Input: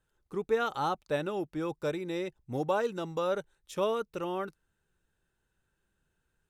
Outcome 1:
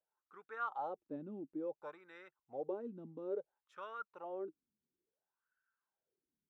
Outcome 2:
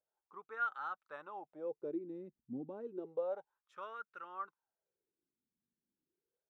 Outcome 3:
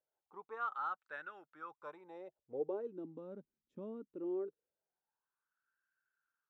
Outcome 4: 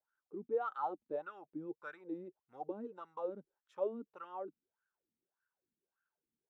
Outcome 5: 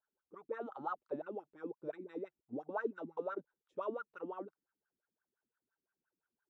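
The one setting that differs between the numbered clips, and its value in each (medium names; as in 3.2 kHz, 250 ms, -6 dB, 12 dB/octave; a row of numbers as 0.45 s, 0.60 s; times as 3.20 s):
wah-wah, rate: 0.58 Hz, 0.31 Hz, 0.21 Hz, 1.7 Hz, 5.8 Hz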